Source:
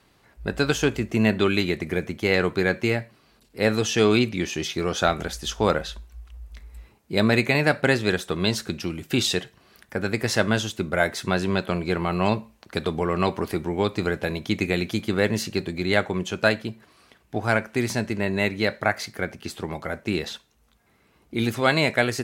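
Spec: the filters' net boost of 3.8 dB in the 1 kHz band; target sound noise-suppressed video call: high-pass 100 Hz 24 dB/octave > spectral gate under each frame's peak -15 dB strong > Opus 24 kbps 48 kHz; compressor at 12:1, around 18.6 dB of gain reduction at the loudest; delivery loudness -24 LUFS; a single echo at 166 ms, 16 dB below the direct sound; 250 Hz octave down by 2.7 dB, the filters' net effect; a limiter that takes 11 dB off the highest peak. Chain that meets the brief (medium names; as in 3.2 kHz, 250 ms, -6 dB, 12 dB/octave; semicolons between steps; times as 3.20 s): peaking EQ 250 Hz -4 dB; peaking EQ 1 kHz +5.5 dB; compression 12:1, threshold -33 dBFS; peak limiter -28 dBFS; high-pass 100 Hz 24 dB/octave; delay 166 ms -16 dB; spectral gate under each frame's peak -15 dB strong; trim +18.5 dB; Opus 24 kbps 48 kHz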